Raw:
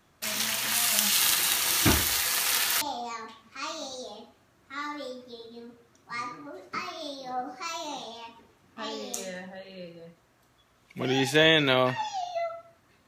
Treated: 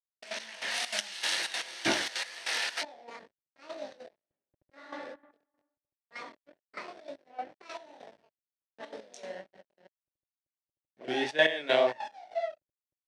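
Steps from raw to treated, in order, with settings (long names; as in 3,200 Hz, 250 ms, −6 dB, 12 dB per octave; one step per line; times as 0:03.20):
0:08.99–0:09.85: high-shelf EQ 2,600 Hz +5 dB
slack as between gear wheels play −29.5 dBFS
chorus effect 2.1 Hz, delay 18 ms, depth 7.5 ms
0:04.18–0:04.96: thrown reverb, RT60 0.91 s, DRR −3 dB
gate pattern "xxx.x..." 195 BPM −12 dB
loudspeaker in its box 330–7,900 Hz, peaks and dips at 600 Hz +8 dB, 1,200 Hz −7 dB, 1,800 Hz +5 dB, 7,100 Hz −9 dB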